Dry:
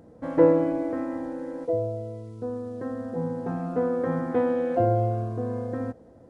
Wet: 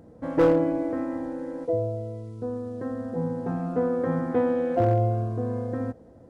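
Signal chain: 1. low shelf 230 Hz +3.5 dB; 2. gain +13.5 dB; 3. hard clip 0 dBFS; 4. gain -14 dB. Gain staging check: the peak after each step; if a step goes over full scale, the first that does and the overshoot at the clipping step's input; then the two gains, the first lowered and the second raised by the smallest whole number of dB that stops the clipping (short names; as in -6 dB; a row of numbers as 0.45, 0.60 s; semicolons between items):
-5.0, +8.5, 0.0, -14.0 dBFS; step 2, 8.5 dB; step 2 +4.5 dB, step 4 -5 dB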